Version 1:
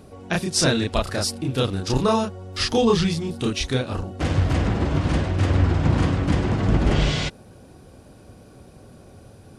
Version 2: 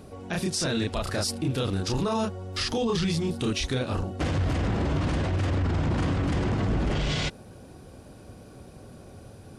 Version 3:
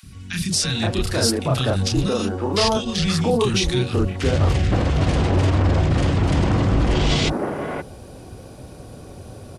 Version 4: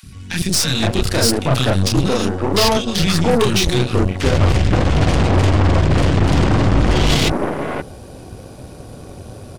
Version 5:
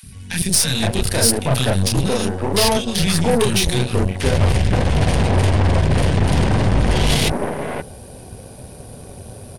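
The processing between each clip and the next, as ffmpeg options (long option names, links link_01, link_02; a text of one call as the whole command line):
ffmpeg -i in.wav -af "alimiter=limit=-19dB:level=0:latency=1:release=14" out.wav
ffmpeg -i in.wav -filter_complex "[0:a]acrossover=split=220|1600[link_01][link_02][link_03];[link_01]adelay=30[link_04];[link_02]adelay=520[link_05];[link_04][link_05][link_03]amix=inputs=3:normalize=0,volume=8.5dB" out.wav
ffmpeg -i in.wav -af "aeval=exprs='0.473*(cos(1*acos(clip(val(0)/0.473,-1,1)))-cos(1*PI/2))+0.0335*(cos(6*acos(clip(val(0)/0.473,-1,1)))-cos(6*PI/2))+0.075*(cos(8*acos(clip(val(0)/0.473,-1,1)))-cos(8*PI/2))':channel_layout=same,volume=3.5dB" out.wav
ffmpeg -i in.wav -af "superequalizer=6b=0.562:10b=0.631:16b=2.82,volume=-1.5dB" out.wav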